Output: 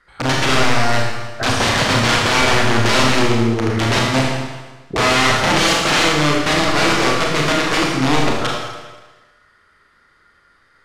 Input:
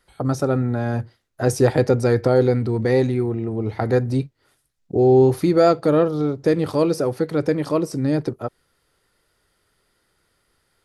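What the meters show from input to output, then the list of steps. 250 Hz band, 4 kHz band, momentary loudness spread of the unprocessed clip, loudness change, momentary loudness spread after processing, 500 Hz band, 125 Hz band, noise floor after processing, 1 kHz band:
+1.0 dB, +22.0 dB, 10 LU, +4.0 dB, 9 LU, −2.0 dB, +1.0 dB, −56 dBFS, +11.0 dB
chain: flat-topped bell 1,500 Hz +10 dB 1.2 octaves
wrap-around overflow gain 14.5 dB
low-pass filter 5,900 Hz 12 dB per octave
delay with a band-pass on its return 196 ms, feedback 30%, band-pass 1,000 Hz, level −13 dB
four-comb reverb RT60 1.2 s, combs from 27 ms, DRR −2.5 dB
level +2 dB

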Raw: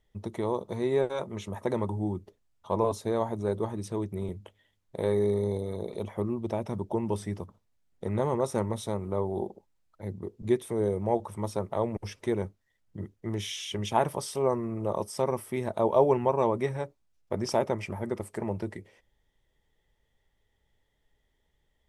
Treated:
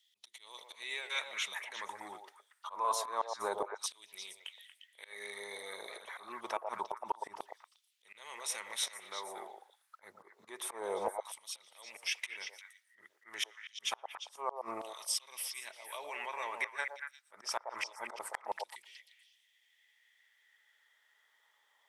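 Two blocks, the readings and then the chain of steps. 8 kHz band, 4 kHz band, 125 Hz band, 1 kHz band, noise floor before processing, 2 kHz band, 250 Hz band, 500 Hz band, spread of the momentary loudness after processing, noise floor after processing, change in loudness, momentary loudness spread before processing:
+3.0 dB, +2.5 dB, below −35 dB, −6.0 dB, −74 dBFS, +4.0 dB, −25.5 dB, −16.5 dB, 17 LU, −74 dBFS, −9.5 dB, 12 LU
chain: brickwall limiter −21 dBFS, peak gain reduction 11.5 dB
volume swells 210 ms
auto-filter high-pass saw down 0.27 Hz 870–3,600 Hz
gate with flip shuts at −27 dBFS, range −39 dB
echo through a band-pass that steps 117 ms, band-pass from 620 Hz, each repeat 1.4 octaves, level −2 dB
level +6 dB

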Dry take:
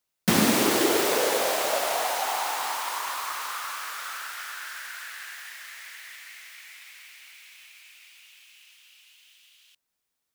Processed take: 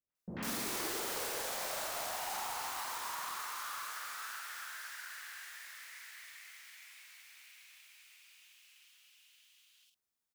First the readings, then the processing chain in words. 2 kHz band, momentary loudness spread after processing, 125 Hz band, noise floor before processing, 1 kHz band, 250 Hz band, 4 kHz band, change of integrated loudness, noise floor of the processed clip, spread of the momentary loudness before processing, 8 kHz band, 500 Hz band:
−11.5 dB, 20 LU, can't be measured, −81 dBFS, −12.5 dB, −20.0 dB, −12.5 dB, −13.5 dB, below −85 dBFS, 22 LU, −10.5 dB, −18.5 dB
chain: dynamic equaliser 320 Hz, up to −7 dB, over −37 dBFS, Q 0.9
gain into a clipping stage and back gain 28 dB
double-tracking delay 46 ms −4 dB
three-band delay without the direct sound lows, mids, highs 90/150 ms, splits 620/2,800 Hz
level −8.5 dB

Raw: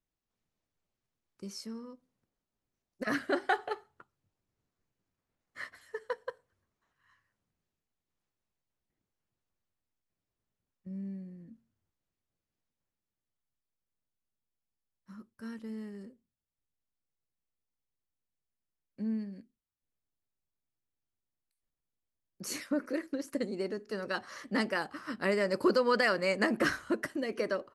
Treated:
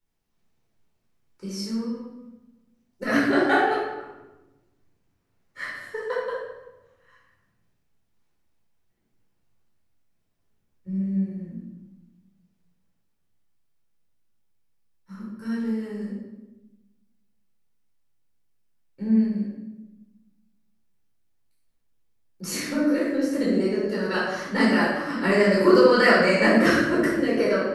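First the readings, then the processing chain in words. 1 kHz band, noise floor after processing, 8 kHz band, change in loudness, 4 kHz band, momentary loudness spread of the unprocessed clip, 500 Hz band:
+10.0 dB, −71 dBFS, +8.0 dB, +11.0 dB, +9.0 dB, 18 LU, +11.0 dB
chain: rectangular room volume 530 cubic metres, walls mixed, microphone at 4.4 metres

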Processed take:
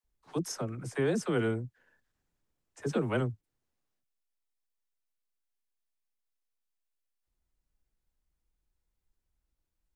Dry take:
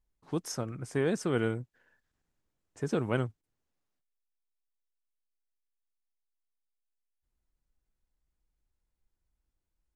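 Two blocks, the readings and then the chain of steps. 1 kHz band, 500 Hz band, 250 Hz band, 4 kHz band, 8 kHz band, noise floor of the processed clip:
0.0 dB, 0.0 dB, 0.0 dB, 0.0 dB, 0.0 dB, −84 dBFS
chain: all-pass dispersion lows, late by 46 ms, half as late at 400 Hz

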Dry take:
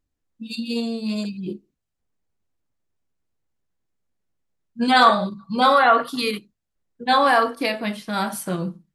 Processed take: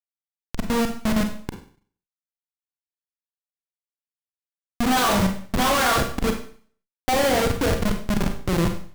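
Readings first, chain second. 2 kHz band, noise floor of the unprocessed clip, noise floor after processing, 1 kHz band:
−4.0 dB, −80 dBFS, below −85 dBFS, −6.0 dB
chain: low-pass filter sweep 9,400 Hz → 510 Hz, 0:04.63–0:07.33
comparator with hysteresis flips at −20.5 dBFS
four-comb reverb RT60 0.48 s, combs from 32 ms, DRR 5 dB
level +2 dB

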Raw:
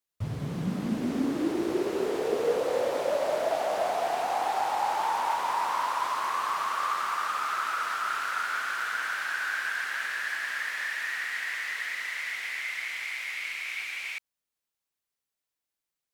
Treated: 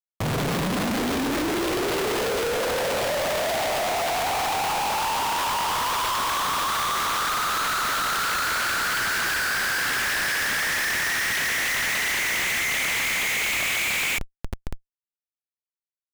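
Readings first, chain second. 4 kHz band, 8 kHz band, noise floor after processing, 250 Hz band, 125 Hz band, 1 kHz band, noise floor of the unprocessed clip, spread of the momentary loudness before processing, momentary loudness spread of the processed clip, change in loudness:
+12.5 dB, +15.5 dB, below −85 dBFS, +3.0 dB, can't be measured, +3.5 dB, below −85 dBFS, 5 LU, 3 LU, +6.5 dB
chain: mid-hump overdrive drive 23 dB, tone 7,900 Hz, clips at −14 dBFS
brickwall limiter −20.5 dBFS, peak gain reduction 6 dB
parametric band 3,500 Hz +8 dB 1.1 octaves
delay with a high-pass on its return 547 ms, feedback 82%, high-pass 4,100 Hz, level −13 dB
comparator with hysteresis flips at −28 dBFS
level −1.5 dB

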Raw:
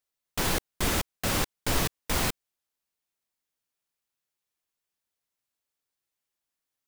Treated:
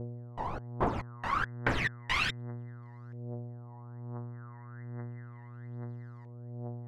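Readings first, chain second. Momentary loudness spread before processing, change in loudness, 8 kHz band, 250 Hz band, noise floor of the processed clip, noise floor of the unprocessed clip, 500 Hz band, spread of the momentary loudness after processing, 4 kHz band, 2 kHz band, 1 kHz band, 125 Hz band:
3 LU, −7.5 dB, −21.0 dB, −4.0 dB, −48 dBFS, below −85 dBFS, −3.5 dB, 16 LU, −6.5 dB, +0.5 dB, +0.5 dB, +0.5 dB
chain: reverb reduction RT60 0.55 s
spectral tilt +2.5 dB per octave
hum with harmonics 120 Hz, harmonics 17, −44 dBFS −7 dB per octave
phase shifter 1.2 Hz, delay 1.1 ms, feedback 74%
auto-filter low-pass saw up 0.32 Hz 510–5,100 Hz
level −6.5 dB

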